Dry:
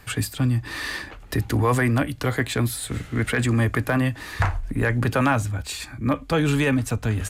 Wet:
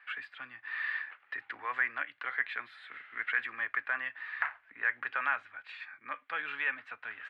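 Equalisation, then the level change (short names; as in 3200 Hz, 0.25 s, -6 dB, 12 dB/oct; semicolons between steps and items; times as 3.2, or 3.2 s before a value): ladder band-pass 2100 Hz, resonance 40%; air absorption 470 m; +8.0 dB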